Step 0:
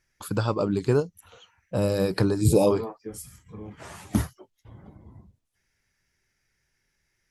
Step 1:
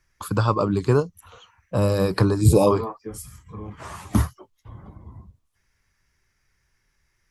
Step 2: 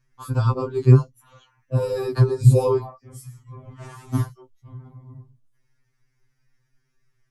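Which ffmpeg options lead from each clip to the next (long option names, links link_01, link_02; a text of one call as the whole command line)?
ffmpeg -i in.wav -filter_complex "[0:a]equalizer=frequency=1100:width_type=o:width=0.43:gain=9.5,acrossover=split=100[link_01][link_02];[link_01]acontrast=89[link_03];[link_03][link_02]amix=inputs=2:normalize=0,volume=2dB" out.wav
ffmpeg -i in.wav -af "lowshelf=frequency=370:gain=11.5,afftfilt=real='re*2.45*eq(mod(b,6),0)':imag='im*2.45*eq(mod(b,6),0)':win_size=2048:overlap=0.75,volume=-4.5dB" out.wav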